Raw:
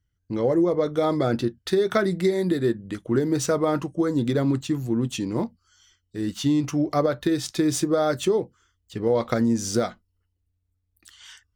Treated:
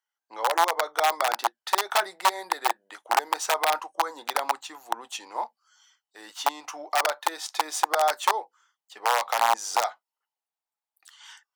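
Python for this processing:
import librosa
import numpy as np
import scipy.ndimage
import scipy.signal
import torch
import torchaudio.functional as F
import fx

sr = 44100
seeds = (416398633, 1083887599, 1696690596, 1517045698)

y = (np.mod(10.0 ** (14.0 / 20.0) * x + 1.0, 2.0) - 1.0) / 10.0 ** (14.0 / 20.0)
y = fx.ladder_highpass(y, sr, hz=750.0, resonance_pct=65)
y = y * librosa.db_to_amplitude(8.5)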